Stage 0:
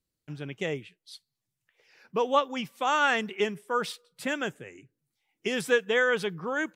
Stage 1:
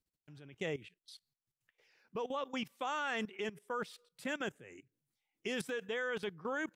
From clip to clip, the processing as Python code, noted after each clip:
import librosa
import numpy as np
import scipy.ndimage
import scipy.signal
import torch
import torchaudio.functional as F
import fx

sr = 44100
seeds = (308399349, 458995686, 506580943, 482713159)

y = fx.level_steps(x, sr, step_db=17)
y = F.gain(torch.from_numpy(y), -2.5).numpy()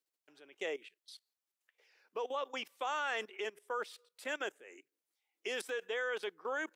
y = scipy.signal.sosfilt(scipy.signal.butter(4, 360.0, 'highpass', fs=sr, output='sos'), x)
y = F.gain(torch.from_numpy(y), 1.0).numpy()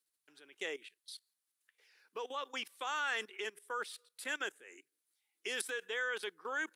y = fx.graphic_eq_15(x, sr, hz=(630, 1600, 4000, 10000), db=(-7, 4, 5, 12))
y = F.gain(torch.from_numpy(y), -1.5).numpy()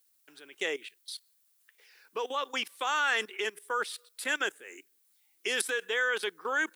y = fx.dmg_noise_colour(x, sr, seeds[0], colour='violet', level_db=-78.0)
y = F.gain(torch.from_numpy(y), 8.0).numpy()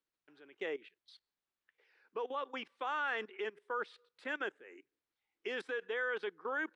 y = fx.spacing_loss(x, sr, db_at_10k=37)
y = F.gain(torch.from_numpy(y), -2.5).numpy()